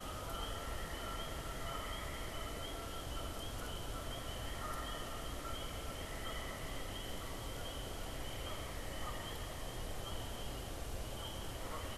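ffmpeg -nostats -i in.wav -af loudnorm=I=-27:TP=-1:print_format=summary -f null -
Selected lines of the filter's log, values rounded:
Input Integrated:    -44.5 LUFS
Input True Peak:     -28.9 dBTP
Input LRA:             1.0 LU
Input Threshold:     -54.5 LUFS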